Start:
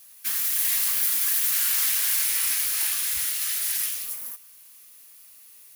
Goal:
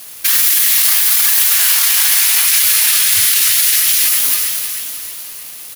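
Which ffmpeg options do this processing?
-filter_complex "[0:a]equalizer=f=3700:t=o:w=1.5:g=3.5,aecho=1:1:313|626|939|1252|1565|1878:0.355|0.195|0.107|0.059|0.0325|0.0179,flanger=delay=6:depth=9.3:regen=-34:speed=0.77:shape=sinusoidal,afreqshift=33,aeval=exprs='sgn(val(0))*max(abs(val(0))-0.00141,0)':c=same,asettb=1/sr,asplit=3[s0][s1][s2];[s0]atrim=end=0.924[s3];[s1]atrim=start=0.92:end=2.46,asetpts=PTS-STARTPTS,afade=t=in:d=0.004:c=qsin,afade=t=out:st=1.536:d=0.004:c=qsin,lowshelf=f=560:t=q:w=3:g=-8.5[s4];[s2]atrim=start=2.456[s5];[s3][s4]acrossfade=d=0.004:c1=hsin:c2=qsin[s6];[s6][s5]acrossfade=d=0.004:c1=qsin:c2=hsin,alimiter=level_in=21.1:limit=0.891:release=50:level=0:latency=1,volume=0.891"

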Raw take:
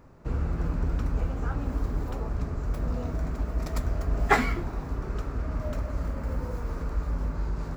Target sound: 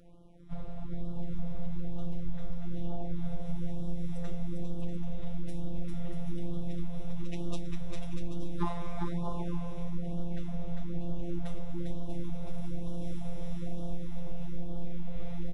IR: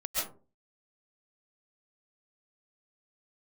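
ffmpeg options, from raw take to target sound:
-af "afftfilt=real='hypot(re,im)*cos(PI*b)':imag='0':win_size=512:overlap=0.75,acompressor=threshold=0.0282:ratio=8,aecho=1:1:200|320|392|435.2|461.1:0.631|0.398|0.251|0.158|0.1,asetrate=22050,aresample=44100,afftfilt=real='re*(1-between(b*sr/1024,240*pow(2000/240,0.5+0.5*sin(2*PI*1.1*pts/sr))/1.41,240*pow(2000/240,0.5+0.5*sin(2*PI*1.1*pts/sr))*1.41))':imag='im*(1-between(b*sr/1024,240*pow(2000/240,0.5+0.5*sin(2*PI*1.1*pts/sr))/1.41,240*pow(2000/240,0.5+0.5*sin(2*PI*1.1*pts/sr))*1.41))':win_size=1024:overlap=0.75,volume=1.33"

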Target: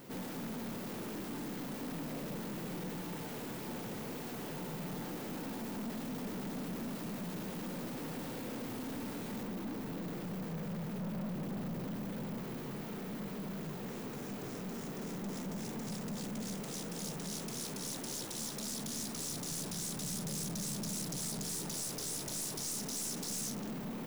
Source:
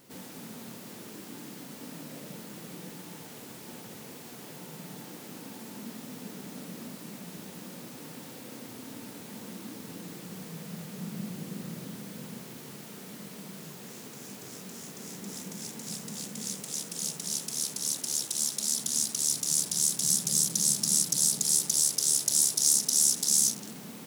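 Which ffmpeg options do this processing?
-af "asetnsamples=n=441:p=0,asendcmd='9.43 equalizer g -15',equalizer=f=8900:w=0.3:g=-9,aeval=exprs='(tanh(158*val(0)+0.2)-tanh(0.2))/158':c=same,volume=2.37"

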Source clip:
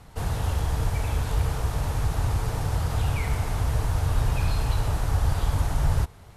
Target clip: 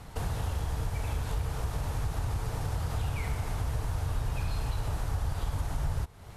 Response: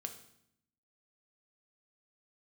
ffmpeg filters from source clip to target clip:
-af "acompressor=threshold=0.0178:ratio=2.5,volume=1.33"

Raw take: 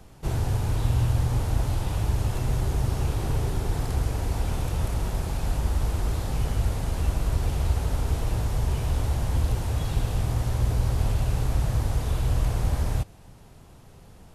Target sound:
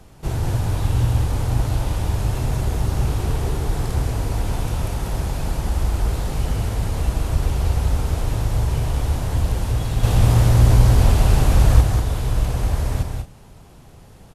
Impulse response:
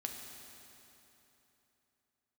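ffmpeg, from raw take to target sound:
-filter_complex "[0:a]asettb=1/sr,asplit=3[s0][s1][s2];[s0]atrim=end=10.034[s3];[s1]atrim=start=10.03:end=11.81,asetpts=PTS-STARTPTS,afade=t=in:d=0.004:c=qsin,afade=t=out:st=1.776:d=0.004:c=qsin,acontrast=74[s4];[s2]atrim=start=11.806[s5];[s3][s4]acrossfade=d=0.004:c1=hsin:c2=qsin[s6];[s6][s5]acrossfade=d=0.004:c1=qsin:c2=hsin,aecho=1:1:189.5|224.5:0.562|0.251,volume=1.41" -ar 48000 -c:a libopus -b:a 96k

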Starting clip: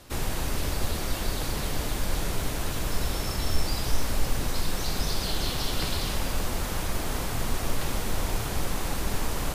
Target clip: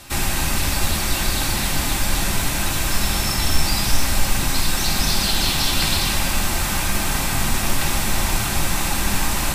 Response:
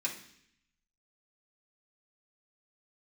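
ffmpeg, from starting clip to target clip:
-filter_complex "[0:a]equalizer=f=440:w=2:g=-11,asplit=2[s0][s1];[1:a]atrim=start_sample=2205[s2];[s1][s2]afir=irnorm=-1:irlink=0,volume=0.596[s3];[s0][s3]amix=inputs=2:normalize=0,volume=2.51"

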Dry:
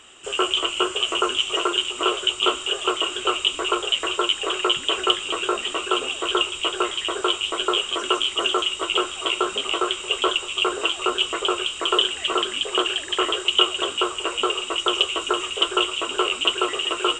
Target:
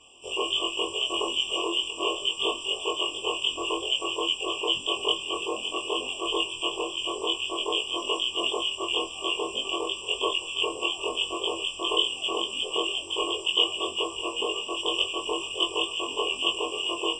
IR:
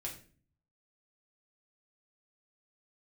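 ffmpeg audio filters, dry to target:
-af "afftfilt=real='re':imag='-im':win_size=2048:overlap=0.75,afftfilt=real='re*eq(mod(floor(b*sr/1024/1200),2),0)':imag='im*eq(mod(floor(b*sr/1024/1200),2),0)':win_size=1024:overlap=0.75"

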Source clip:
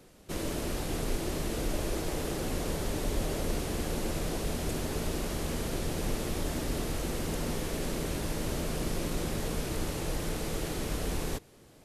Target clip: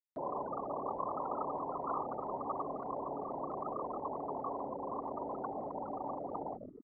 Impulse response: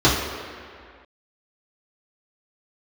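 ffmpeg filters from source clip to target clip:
-filter_complex "[0:a]highpass=50,bass=f=250:g=10,treble=f=4000:g=-13,asplit=6[s0][s1][s2][s3][s4][s5];[s1]adelay=216,afreqshift=-96,volume=0.631[s6];[s2]adelay=432,afreqshift=-192,volume=0.226[s7];[s3]adelay=648,afreqshift=-288,volume=0.0822[s8];[s4]adelay=864,afreqshift=-384,volume=0.0295[s9];[s5]adelay=1080,afreqshift=-480,volume=0.0106[s10];[s0][s6][s7][s8][s9][s10]amix=inputs=6:normalize=0,afftfilt=real='re*gte(hypot(re,im),0.0631)':imag='im*gte(hypot(re,im),0.0631)':win_size=1024:overlap=0.75,alimiter=limit=0.0631:level=0:latency=1:release=83,asplit=3[s11][s12][s13];[s11]bandpass=f=730:t=q:w=8,volume=1[s14];[s12]bandpass=f=1090:t=q:w=8,volume=0.501[s15];[s13]bandpass=f=2440:t=q:w=8,volume=0.355[s16];[s14][s15][s16]amix=inputs=3:normalize=0,asetrate=76440,aresample=44100,equalizer=f=89:w=0.87:g=-10.5,acompressor=mode=upward:threshold=0.00141:ratio=2.5,volume=7.5"

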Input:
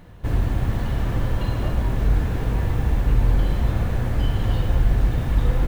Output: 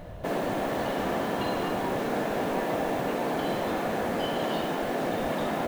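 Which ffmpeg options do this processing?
-af "equalizer=f=620:t=o:w=0.46:g=14.5,afftfilt=real='re*lt(hypot(re,im),0.251)':imag='im*lt(hypot(re,im),0.251)':win_size=1024:overlap=0.75,volume=1.26"

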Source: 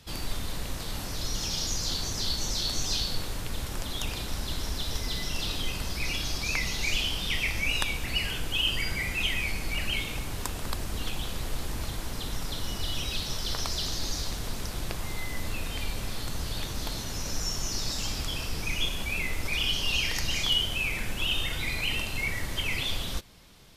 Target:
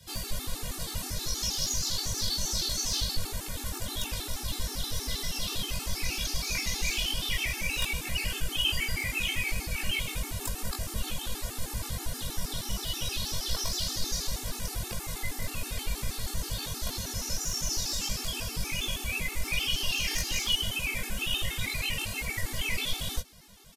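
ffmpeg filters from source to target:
-filter_complex "[0:a]acrossover=split=140|6000[s0][s1][s2];[s2]acontrast=80[s3];[s0][s1][s3]amix=inputs=3:normalize=0,asoftclip=type=tanh:threshold=0.126,asplit=2[s4][s5];[s5]adelay=20,volume=0.794[s6];[s4][s6]amix=inputs=2:normalize=0,afftfilt=real='re*gt(sin(2*PI*6.3*pts/sr)*(1-2*mod(floor(b*sr/1024/230),2)),0)':imag='im*gt(sin(2*PI*6.3*pts/sr)*(1-2*mod(floor(b*sr/1024/230),2)),0)':win_size=1024:overlap=0.75"

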